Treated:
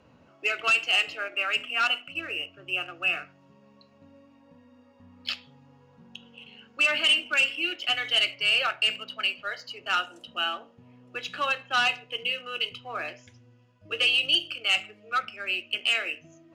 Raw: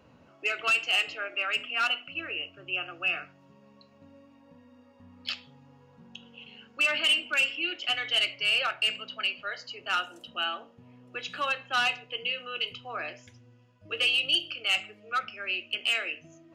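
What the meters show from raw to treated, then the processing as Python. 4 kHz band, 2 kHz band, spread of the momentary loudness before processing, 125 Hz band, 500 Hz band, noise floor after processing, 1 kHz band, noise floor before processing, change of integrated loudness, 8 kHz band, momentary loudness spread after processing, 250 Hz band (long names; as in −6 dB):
+2.5 dB, +2.5 dB, 14 LU, +1.0 dB, +2.0 dB, −58 dBFS, +2.0 dB, −58 dBFS, +2.5 dB, +1.5 dB, 14 LU, +1.5 dB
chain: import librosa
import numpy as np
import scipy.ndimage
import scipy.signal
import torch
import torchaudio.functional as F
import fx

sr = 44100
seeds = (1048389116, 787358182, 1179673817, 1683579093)

p1 = scipy.signal.sosfilt(scipy.signal.butter(2, 10000.0, 'lowpass', fs=sr, output='sos'), x)
p2 = np.sign(p1) * np.maximum(np.abs(p1) - 10.0 ** (-42.0 / 20.0), 0.0)
y = p1 + (p2 * librosa.db_to_amplitude(-9.0))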